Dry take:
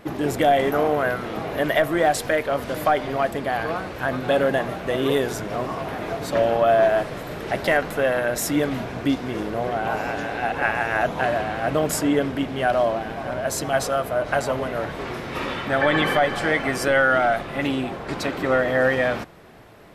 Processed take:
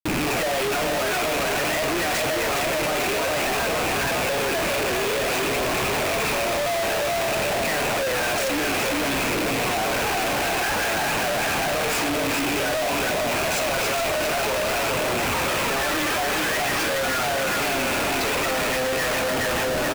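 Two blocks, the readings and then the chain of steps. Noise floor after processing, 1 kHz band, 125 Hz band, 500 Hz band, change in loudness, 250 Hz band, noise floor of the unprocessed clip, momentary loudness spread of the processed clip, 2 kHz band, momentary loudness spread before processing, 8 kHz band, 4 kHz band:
-23 dBFS, -0.5 dB, -2.5 dB, -2.5 dB, +0.5 dB, -3.0 dB, -34 dBFS, 1 LU, +1.5 dB, 9 LU, +7.5 dB, +7.5 dB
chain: rattling part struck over -36 dBFS, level -17 dBFS; HPF 560 Hz 6 dB/oct; darkening echo 0.7 s, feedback 68%, low-pass 2700 Hz, level -19 dB; phaser 0.53 Hz, delay 3.5 ms, feedback 57%; reverse; upward compressor, threshold -24 dBFS; reverse; limiter -14.5 dBFS, peak gain reduction 11.5 dB; LPF 7400 Hz; tapped delay 46/415/441/850 ms -6.5/-4/-14/-8.5 dB; Schmitt trigger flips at -31.5 dBFS

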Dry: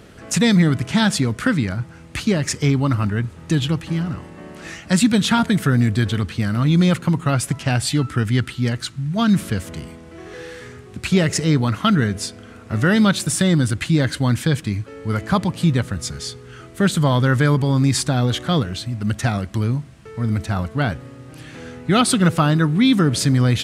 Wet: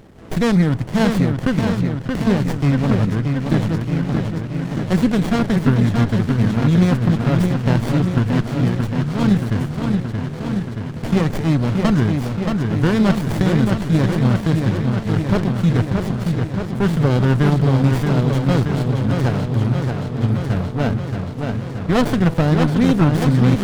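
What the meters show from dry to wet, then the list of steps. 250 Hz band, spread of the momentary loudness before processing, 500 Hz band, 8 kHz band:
+2.0 dB, 17 LU, +2.5 dB, -12.0 dB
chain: dark delay 0.626 s, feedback 72%, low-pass 4000 Hz, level -4.5 dB; running maximum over 33 samples

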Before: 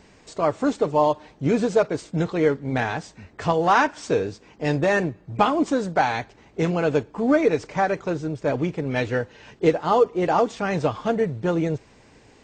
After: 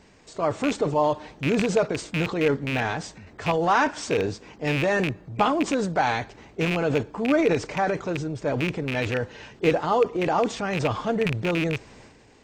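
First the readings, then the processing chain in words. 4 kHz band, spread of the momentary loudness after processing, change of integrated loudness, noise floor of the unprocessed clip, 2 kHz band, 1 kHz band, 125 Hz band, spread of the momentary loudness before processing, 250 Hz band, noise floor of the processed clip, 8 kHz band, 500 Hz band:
+3.0 dB, 7 LU, -2.0 dB, -54 dBFS, 0.0 dB, -2.5 dB, -1.0 dB, 8 LU, -2.0 dB, -52 dBFS, +2.5 dB, -2.5 dB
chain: rattling part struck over -26 dBFS, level -14 dBFS; transient shaper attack 0 dB, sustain +8 dB; gain -3 dB

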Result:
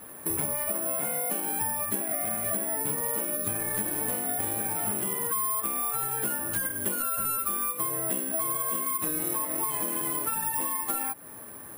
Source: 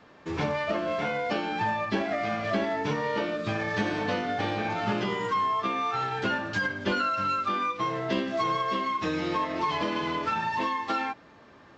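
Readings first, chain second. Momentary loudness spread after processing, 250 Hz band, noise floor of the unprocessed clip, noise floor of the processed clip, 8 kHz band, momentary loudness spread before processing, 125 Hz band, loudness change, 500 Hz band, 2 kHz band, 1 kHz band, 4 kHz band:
1 LU, -6.5 dB, -53 dBFS, -43 dBFS, n/a, 3 LU, -6.0 dB, +1.5 dB, -6.5 dB, -8.5 dB, -7.0 dB, -10.5 dB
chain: tracing distortion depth 0.029 ms; high shelf 2800 Hz -7.5 dB; compressor 6:1, threshold -38 dBFS, peak gain reduction 14.5 dB; careless resampling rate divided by 4×, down none, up zero stuff; gain +4.5 dB

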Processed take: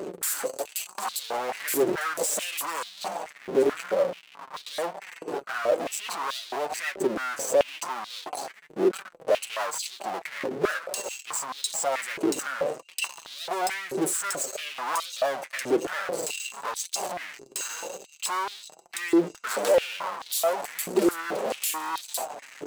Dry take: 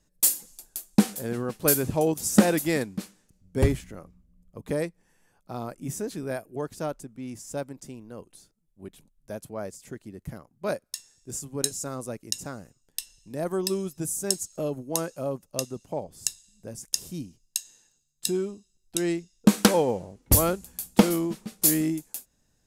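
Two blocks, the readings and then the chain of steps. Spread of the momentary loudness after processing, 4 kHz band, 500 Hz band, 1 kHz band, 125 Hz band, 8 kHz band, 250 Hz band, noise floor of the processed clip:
10 LU, +1.5 dB, +3.0 dB, +6.0 dB, -17.0 dB, -1.5 dB, -5.0 dB, -53 dBFS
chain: Wiener smoothing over 25 samples; bell 7700 Hz +7 dB 0.34 oct; power-law curve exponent 0.35; compressor, threshold -12 dBFS, peak gain reduction 7.5 dB; sample leveller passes 1; flange 1 Hz, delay 5 ms, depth 2.7 ms, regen +37%; limiter -14.5 dBFS, peak gain reduction 9 dB; stepped high-pass 4.6 Hz 380–3800 Hz; gain -7 dB

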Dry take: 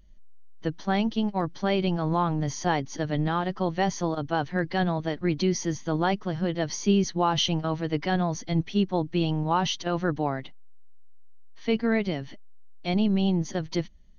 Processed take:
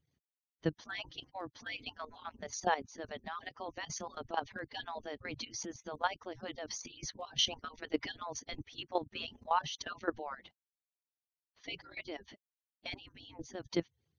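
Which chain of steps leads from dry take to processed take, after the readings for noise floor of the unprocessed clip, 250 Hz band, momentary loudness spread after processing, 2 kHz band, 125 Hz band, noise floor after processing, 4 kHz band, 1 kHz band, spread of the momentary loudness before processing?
-42 dBFS, -19.0 dB, 12 LU, -8.5 dB, -22.5 dB, under -85 dBFS, -6.5 dB, -10.0 dB, 6 LU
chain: median-filter separation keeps percussive; level quantiser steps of 13 dB; gain -2 dB

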